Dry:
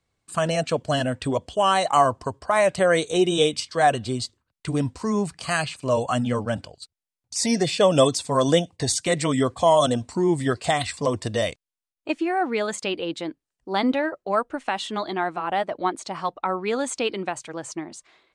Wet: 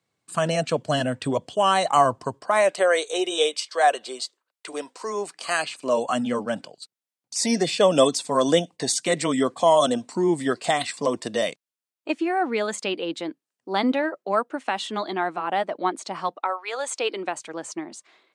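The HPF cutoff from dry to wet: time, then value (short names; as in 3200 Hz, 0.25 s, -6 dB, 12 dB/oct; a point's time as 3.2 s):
HPF 24 dB/oct
2.3 s 120 Hz
2.93 s 420 Hz
4.88 s 420 Hz
6.21 s 180 Hz
16.32 s 180 Hz
16.59 s 730 Hz
17.38 s 190 Hz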